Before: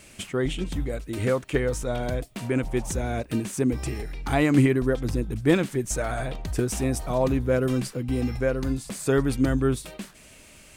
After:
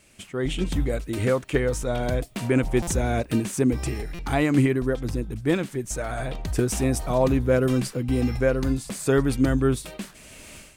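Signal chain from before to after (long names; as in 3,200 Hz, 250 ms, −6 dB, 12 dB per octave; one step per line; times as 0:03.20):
automatic gain control gain up to 16.5 dB
buffer that repeats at 0:02.82/0:04.14, samples 256, times 8
level −8 dB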